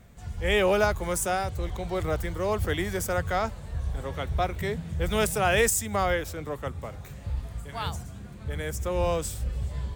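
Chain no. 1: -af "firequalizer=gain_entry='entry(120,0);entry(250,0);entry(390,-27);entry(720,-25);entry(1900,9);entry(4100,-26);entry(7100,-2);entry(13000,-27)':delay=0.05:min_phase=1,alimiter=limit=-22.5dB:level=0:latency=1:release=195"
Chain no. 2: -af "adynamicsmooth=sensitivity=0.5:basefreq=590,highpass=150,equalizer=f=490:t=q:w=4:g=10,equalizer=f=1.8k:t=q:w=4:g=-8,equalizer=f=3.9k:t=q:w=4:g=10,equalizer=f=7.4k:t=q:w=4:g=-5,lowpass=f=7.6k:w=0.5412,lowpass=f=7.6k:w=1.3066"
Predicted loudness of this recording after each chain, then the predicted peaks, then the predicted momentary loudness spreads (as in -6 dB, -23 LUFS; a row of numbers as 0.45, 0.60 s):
-34.5, -27.0 LUFS; -22.5, -9.5 dBFS; 7, 22 LU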